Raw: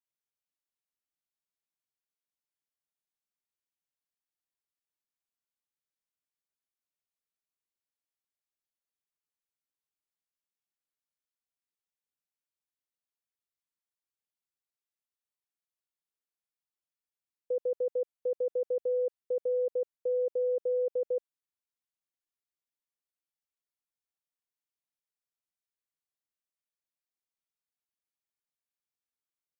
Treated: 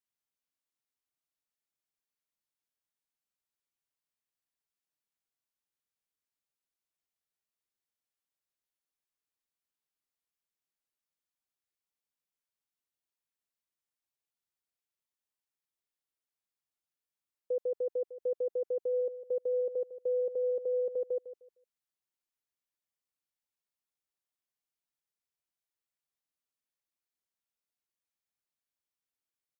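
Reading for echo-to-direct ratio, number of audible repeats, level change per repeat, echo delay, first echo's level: -13.0 dB, 2, -13.0 dB, 153 ms, -13.0 dB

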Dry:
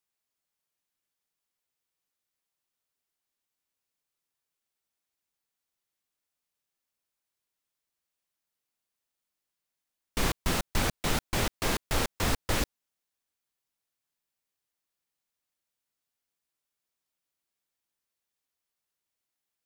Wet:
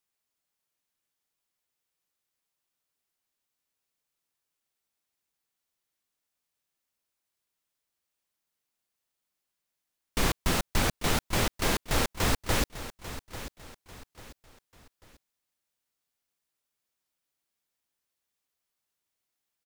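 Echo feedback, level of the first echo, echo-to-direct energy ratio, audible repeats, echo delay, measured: 36%, -13.5 dB, -13.0 dB, 3, 843 ms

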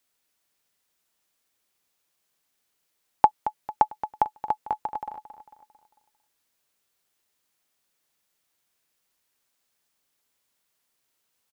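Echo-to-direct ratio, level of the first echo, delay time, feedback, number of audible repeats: -11.0 dB, -12.0 dB, 224 ms, 45%, 4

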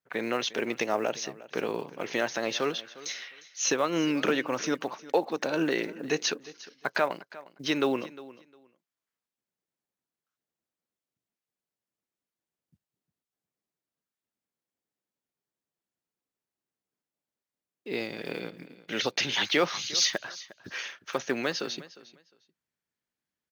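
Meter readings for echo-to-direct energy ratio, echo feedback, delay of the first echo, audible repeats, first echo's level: -18.5 dB, 19%, 355 ms, 2, -18.5 dB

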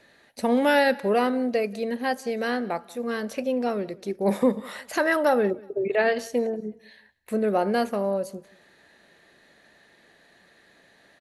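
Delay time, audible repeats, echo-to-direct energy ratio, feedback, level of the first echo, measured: 184 ms, 2, -23.0 dB, 29%, -23.5 dB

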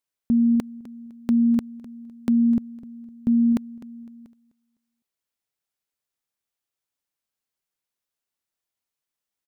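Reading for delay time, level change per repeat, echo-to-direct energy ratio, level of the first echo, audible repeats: 254 ms, -10.5 dB, -16.5 dB, -17.0 dB, 2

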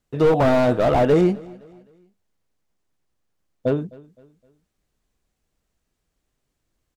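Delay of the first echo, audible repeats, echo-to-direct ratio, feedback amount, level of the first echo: 258 ms, 2, -22.5 dB, 40%, -23.0 dB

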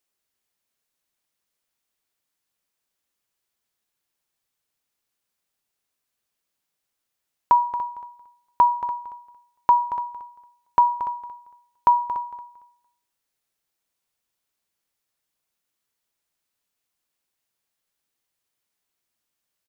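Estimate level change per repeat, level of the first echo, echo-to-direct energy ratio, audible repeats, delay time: -13.5 dB, -12.5 dB, -12.5 dB, 2, 228 ms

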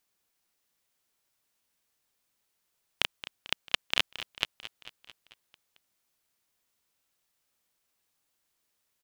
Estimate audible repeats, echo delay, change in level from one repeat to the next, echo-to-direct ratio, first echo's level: 5, 222 ms, -4.5 dB, -12.0 dB, -14.0 dB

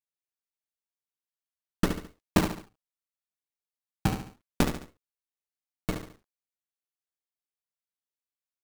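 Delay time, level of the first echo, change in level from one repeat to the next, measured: 71 ms, -8.0 dB, -8.0 dB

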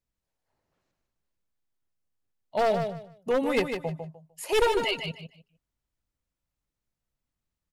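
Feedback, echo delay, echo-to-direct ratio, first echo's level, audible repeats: 22%, 151 ms, -7.0 dB, -7.0 dB, 3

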